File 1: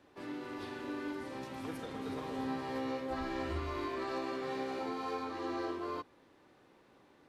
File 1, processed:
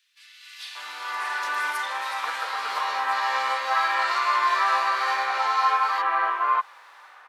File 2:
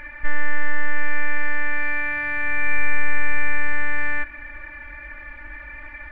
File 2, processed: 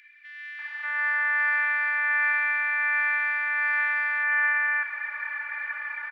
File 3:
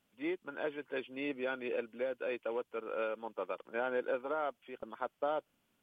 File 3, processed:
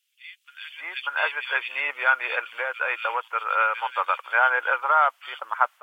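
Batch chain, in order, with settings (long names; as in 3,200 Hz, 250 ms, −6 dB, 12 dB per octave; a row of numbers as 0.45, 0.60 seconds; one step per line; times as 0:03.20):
high-pass filter 1,000 Hz 24 dB per octave
high-shelf EQ 2,900 Hz −8.5 dB
automatic gain control gain up to 9.5 dB
brickwall limiter −17 dBFS
multiband delay without the direct sound highs, lows 590 ms, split 2,700 Hz
loudness normalisation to −24 LKFS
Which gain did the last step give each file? +15.0, +1.0, +15.0 decibels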